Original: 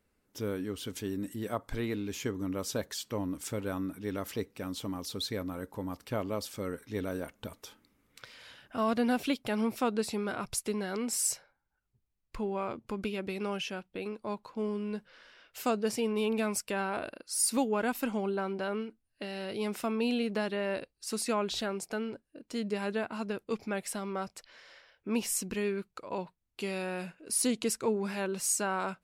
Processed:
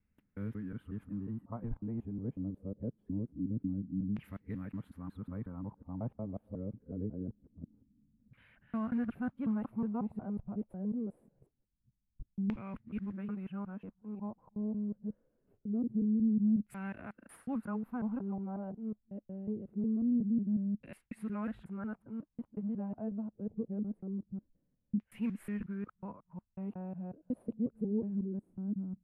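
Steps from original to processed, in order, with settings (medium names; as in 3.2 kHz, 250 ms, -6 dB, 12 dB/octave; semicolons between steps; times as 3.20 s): time reversed locally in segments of 182 ms; FFT filter 210 Hz 0 dB, 380 Hz -16 dB, 2.8 kHz -16 dB, 5.6 kHz -29 dB, 11 kHz +11 dB; modulation noise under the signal 30 dB; LFO low-pass saw down 0.24 Hz 210–2400 Hz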